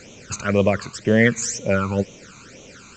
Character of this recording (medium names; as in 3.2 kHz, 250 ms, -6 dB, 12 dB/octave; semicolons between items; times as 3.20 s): a quantiser's noise floor 8-bit, dither triangular; phasing stages 12, 2 Hz, lowest notch 540–1600 Hz; µ-law